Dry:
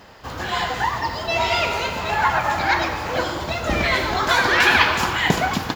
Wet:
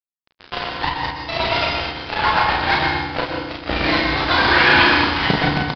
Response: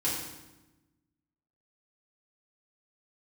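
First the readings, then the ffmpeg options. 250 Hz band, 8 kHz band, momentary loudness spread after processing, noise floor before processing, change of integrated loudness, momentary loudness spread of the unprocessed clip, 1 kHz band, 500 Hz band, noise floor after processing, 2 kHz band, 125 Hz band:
+4.5 dB, under -15 dB, 13 LU, -33 dBFS, +2.0 dB, 10 LU, +1.0 dB, +0.5 dB, under -85 dBFS, +2.0 dB, +2.5 dB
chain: -filter_complex "[0:a]acrusher=bits=2:mix=0:aa=0.5,aecho=1:1:34|48:0.668|0.501,asplit=2[s0][s1];[1:a]atrim=start_sample=2205,adelay=117[s2];[s1][s2]afir=irnorm=-1:irlink=0,volume=0.316[s3];[s0][s3]amix=inputs=2:normalize=0,aresample=11025,aresample=44100,volume=0.841"

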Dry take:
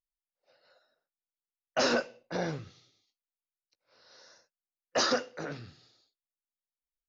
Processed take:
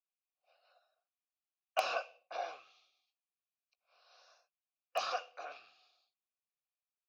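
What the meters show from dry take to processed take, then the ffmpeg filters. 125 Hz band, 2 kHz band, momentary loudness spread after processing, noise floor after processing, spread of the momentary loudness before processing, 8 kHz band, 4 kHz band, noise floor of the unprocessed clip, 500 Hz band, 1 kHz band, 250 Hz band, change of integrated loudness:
under -35 dB, -8.5 dB, 14 LU, under -85 dBFS, 14 LU, no reading, -10.5 dB, under -85 dBFS, -9.5 dB, -2.5 dB, -31.5 dB, -8.0 dB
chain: -filter_complex "[0:a]tiltshelf=f=1400:g=-9,acrossover=split=360|660[s0][s1][s2];[s0]acompressor=threshold=0.00126:ratio=6[s3];[s3][s1][s2]amix=inputs=3:normalize=0,crystalizer=i=2.5:c=0,asplit=2[s4][s5];[s5]highpass=f=720:p=1,volume=6.31,asoftclip=type=tanh:threshold=0.75[s6];[s4][s6]amix=inputs=2:normalize=0,lowpass=f=1200:p=1,volume=0.501,asplit=3[s7][s8][s9];[s7]bandpass=f=730:t=q:w=8,volume=1[s10];[s8]bandpass=f=1090:t=q:w=8,volume=0.501[s11];[s9]bandpass=f=2440:t=q:w=8,volume=0.355[s12];[s10][s11][s12]amix=inputs=3:normalize=0,asplit=2[s13][s14];[s14]acrusher=bits=3:mix=0:aa=0.000001,volume=0.473[s15];[s13][s15]amix=inputs=2:normalize=0,volume=1.12"

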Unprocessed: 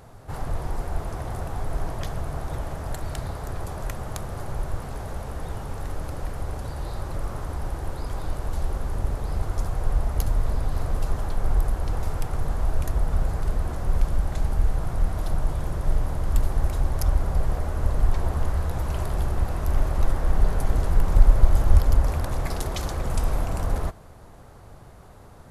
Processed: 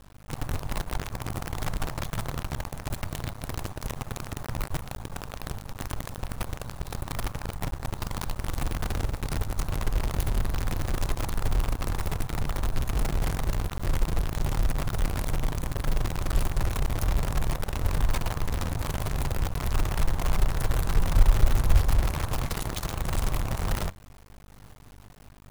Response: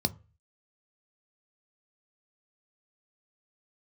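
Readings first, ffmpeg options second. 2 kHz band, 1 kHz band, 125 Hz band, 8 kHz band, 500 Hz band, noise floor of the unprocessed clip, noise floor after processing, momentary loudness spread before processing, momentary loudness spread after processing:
+3.0 dB, -1.0 dB, -2.5 dB, +3.5 dB, -3.0 dB, -46 dBFS, -48 dBFS, 9 LU, 9 LU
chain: -filter_complex "[0:a]asplit=2[s0][s1];[1:a]atrim=start_sample=2205,atrim=end_sample=4410[s2];[s1][s2]afir=irnorm=-1:irlink=0,volume=0.119[s3];[s0][s3]amix=inputs=2:normalize=0,aeval=exprs='val(0)+0.00708*(sin(2*PI*50*n/s)+sin(2*PI*2*50*n/s)/2+sin(2*PI*3*50*n/s)/3+sin(2*PI*4*50*n/s)/4+sin(2*PI*5*50*n/s)/5)':c=same,acrusher=bits=5:dc=4:mix=0:aa=0.000001,volume=0.596"

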